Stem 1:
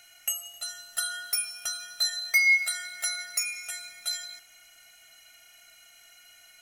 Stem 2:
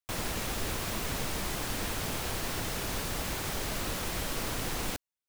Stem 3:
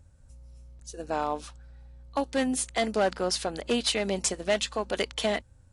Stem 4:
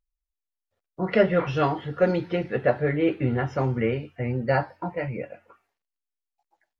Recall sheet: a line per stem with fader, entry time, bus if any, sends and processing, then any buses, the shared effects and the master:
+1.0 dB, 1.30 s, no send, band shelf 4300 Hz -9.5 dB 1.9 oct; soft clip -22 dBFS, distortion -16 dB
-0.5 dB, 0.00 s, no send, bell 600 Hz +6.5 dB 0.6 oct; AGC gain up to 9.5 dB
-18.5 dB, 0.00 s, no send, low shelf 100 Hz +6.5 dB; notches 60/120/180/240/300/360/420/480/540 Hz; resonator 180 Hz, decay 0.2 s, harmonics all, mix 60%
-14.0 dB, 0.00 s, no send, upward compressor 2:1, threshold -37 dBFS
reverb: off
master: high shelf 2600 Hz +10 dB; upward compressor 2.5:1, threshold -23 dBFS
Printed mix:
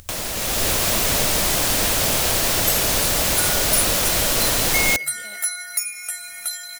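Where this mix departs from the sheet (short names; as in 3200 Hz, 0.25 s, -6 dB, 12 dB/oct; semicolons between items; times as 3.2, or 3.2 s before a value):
stem 1: entry 1.30 s -> 2.40 s; stem 4 -14.0 dB -> -21.0 dB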